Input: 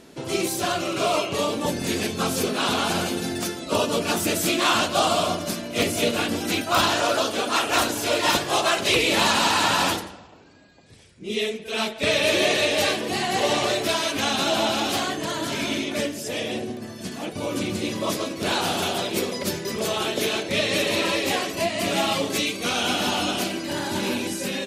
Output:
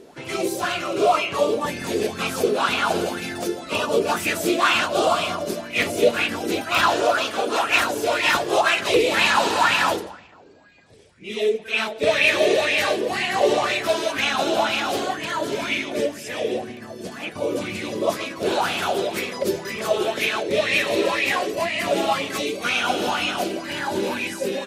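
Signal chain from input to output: LFO bell 2 Hz 390–2500 Hz +16 dB; gain -4.5 dB

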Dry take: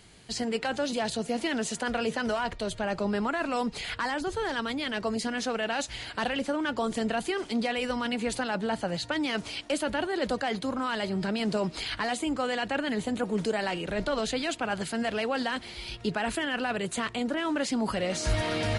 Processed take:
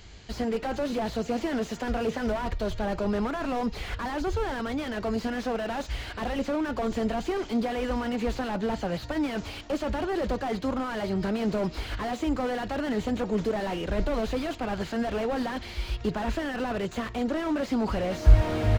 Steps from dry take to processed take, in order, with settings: resonant low shelf 100 Hz +9 dB, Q 1.5; downsampling 16000 Hz; slew limiter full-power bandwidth 21 Hz; gain +3.5 dB

